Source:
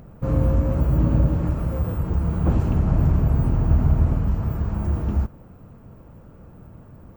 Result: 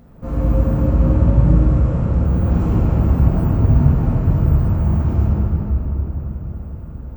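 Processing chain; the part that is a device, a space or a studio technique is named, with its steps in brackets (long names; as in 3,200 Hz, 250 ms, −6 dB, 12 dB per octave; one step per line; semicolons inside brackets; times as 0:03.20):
0:00.75–0:02.25: low-pass filter 10,000 Hz 24 dB per octave
cathedral (convolution reverb RT60 5.0 s, pre-delay 3 ms, DRR −7.5 dB)
level −4.5 dB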